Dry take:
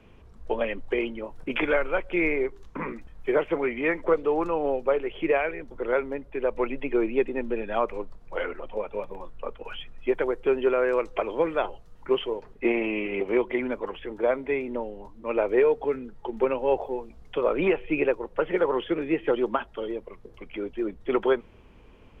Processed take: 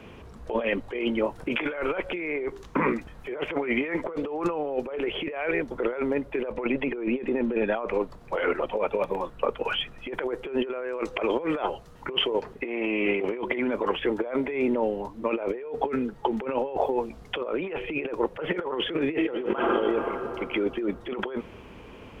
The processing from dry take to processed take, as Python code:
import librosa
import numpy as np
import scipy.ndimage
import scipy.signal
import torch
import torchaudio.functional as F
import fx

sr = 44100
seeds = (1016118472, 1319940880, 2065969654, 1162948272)

y = fx.lowpass(x, sr, hz=3100.0, slope=6, at=(6.52, 8.0))
y = fx.reverb_throw(y, sr, start_s=19.08, length_s=0.64, rt60_s=2.8, drr_db=5.5)
y = fx.highpass(y, sr, hz=120.0, slope=6)
y = fx.over_compress(y, sr, threshold_db=-33.0, ratio=-1.0)
y = F.gain(torch.from_numpy(y), 5.0).numpy()